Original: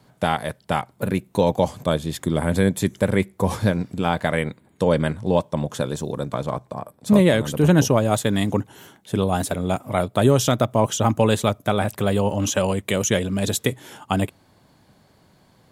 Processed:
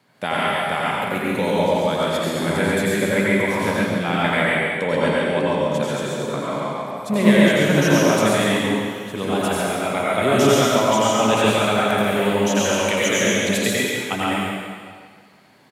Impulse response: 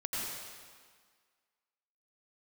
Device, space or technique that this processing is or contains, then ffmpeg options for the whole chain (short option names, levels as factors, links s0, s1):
PA in a hall: -filter_complex "[0:a]highpass=170,equalizer=f=2200:t=o:w=1.2:g=8,aecho=1:1:138:0.562[s0];[1:a]atrim=start_sample=2205[s1];[s0][s1]afir=irnorm=-1:irlink=0,volume=0.708"